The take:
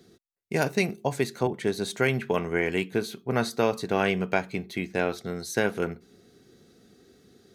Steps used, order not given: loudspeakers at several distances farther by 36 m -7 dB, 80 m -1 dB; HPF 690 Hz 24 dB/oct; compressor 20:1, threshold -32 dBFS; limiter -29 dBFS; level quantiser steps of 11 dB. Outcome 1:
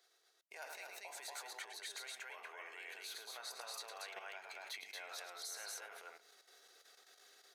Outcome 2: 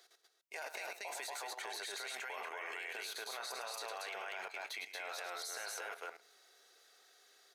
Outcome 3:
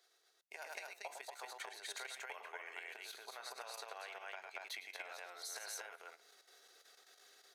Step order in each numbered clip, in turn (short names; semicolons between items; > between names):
limiter > loudspeakers at several distances > level quantiser > HPF > compressor; HPF > limiter > compressor > loudspeakers at several distances > level quantiser; compressor > loudspeakers at several distances > level quantiser > limiter > HPF